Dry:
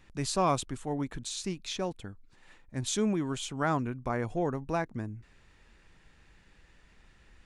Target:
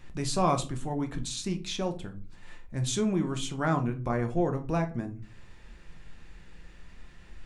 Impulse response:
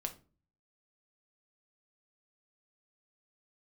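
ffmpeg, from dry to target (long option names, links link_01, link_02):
-filter_complex "[0:a]lowshelf=frequency=220:gain=3.5,asplit=2[link_01][link_02];[link_02]acompressor=threshold=-45dB:ratio=6,volume=0dB[link_03];[link_01][link_03]amix=inputs=2:normalize=0[link_04];[1:a]atrim=start_sample=2205[link_05];[link_04][link_05]afir=irnorm=-1:irlink=0"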